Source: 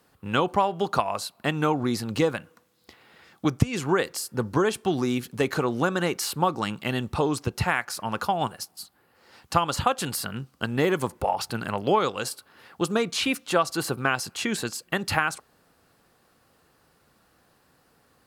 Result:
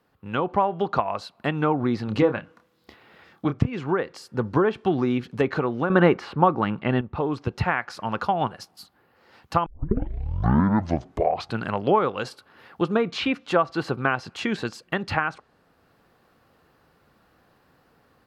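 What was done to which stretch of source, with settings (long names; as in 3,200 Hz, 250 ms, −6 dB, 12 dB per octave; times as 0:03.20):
0:02.05–0:03.73: double-tracking delay 28 ms −8 dB
0:05.90–0:07.01: clip gain +10.5 dB
0:09.66: tape start 1.92 s
whole clip: treble cut that deepens with the level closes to 2,000 Hz, closed at −18.5 dBFS; parametric band 8,900 Hz −13 dB 1.6 octaves; automatic gain control gain up to 6.5 dB; level −3.5 dB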